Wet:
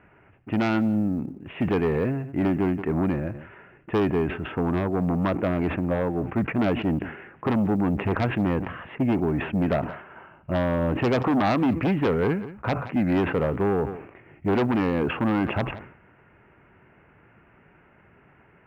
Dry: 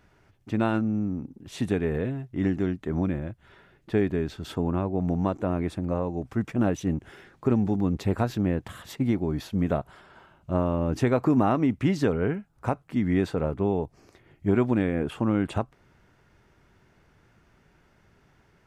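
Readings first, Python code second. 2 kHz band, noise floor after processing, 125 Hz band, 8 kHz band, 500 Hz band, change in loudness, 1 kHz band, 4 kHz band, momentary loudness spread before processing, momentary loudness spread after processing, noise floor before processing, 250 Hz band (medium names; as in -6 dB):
+6.0 dB, -57 dBFS, +1.0 dB, no reading, +2.5 dB, +2.0 dB, +4.0 dB, +3.5 dB, 8 LU, 7 LU, -62 dBFS, +2.0 dB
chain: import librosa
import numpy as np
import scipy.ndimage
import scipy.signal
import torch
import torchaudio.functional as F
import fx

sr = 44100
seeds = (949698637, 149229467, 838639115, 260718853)

p1 = scipy.signal.sosfilt(scipy.signal.butter(12, 2800.0, 'lowpass', fs=sr, output='sos'), x)
p2 = fx.low_shelf(p1, sr, hz=230.0, db=-2.0)
p3 = fx.fold_sine(p2, sr, drive_db=11, ceiling_db=-11.0)
p4 = p2 + (p3 * librosa.db_to_amplitude(-6.0))
p5 = fx.highpass(p4, sr, hz=99.0, slope=6)
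p6 = fx.quant_float(p5, sr, bits=6)
p7 = p6 + 10.0 ** (-23.0 / 20.0) * np.pad(p6, (int(176 * sr / 1000.0), 0))[:len(p6)]
p8 = fx.sustainer(p7, sr, db_per_s=88.0)
y = p8 * librosa.db_to_amplitude(-4.5)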